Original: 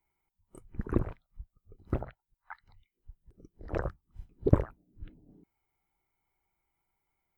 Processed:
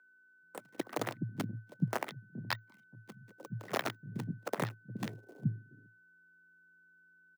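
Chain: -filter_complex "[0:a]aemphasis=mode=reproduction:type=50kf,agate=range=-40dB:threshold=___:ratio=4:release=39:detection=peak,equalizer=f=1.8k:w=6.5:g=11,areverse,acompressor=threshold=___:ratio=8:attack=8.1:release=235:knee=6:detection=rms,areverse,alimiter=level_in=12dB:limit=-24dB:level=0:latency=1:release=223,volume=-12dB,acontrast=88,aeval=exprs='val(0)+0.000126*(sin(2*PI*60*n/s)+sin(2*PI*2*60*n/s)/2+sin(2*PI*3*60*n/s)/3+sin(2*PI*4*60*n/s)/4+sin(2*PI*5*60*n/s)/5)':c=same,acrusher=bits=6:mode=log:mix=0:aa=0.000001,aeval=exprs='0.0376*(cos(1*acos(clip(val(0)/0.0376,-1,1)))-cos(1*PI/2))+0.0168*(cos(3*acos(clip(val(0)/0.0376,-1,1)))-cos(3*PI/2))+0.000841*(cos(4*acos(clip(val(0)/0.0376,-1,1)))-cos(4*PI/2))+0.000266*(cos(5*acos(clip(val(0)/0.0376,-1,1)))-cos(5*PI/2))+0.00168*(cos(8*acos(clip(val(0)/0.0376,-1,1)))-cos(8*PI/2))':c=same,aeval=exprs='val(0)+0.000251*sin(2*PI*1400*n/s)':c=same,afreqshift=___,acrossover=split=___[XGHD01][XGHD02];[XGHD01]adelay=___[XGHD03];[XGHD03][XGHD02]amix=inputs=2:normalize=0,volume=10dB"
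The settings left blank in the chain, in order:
-58dB, -37dB, 110, 260, 420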